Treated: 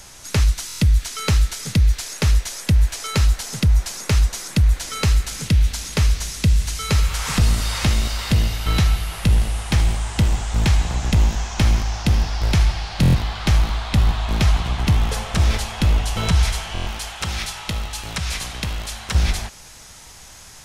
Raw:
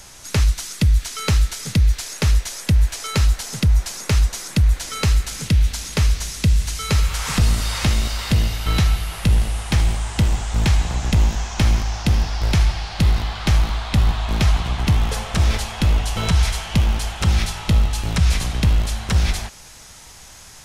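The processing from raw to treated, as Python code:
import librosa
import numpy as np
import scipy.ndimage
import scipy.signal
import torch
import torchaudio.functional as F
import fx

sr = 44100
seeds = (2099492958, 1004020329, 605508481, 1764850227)

y = fx.low_shelf(x, sr, hz=420.0, db=-11.5, at=(16.83, 19.15))
y = fx.buffer_glitch(y, sr, at_s=(0.67, 13.01, 16.73), block=1024, repeats=5)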